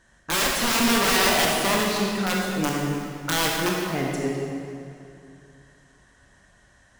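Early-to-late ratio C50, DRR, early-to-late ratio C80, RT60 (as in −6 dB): −0.5 dB, −2.5 dB, 1.0 dB, 2.5 s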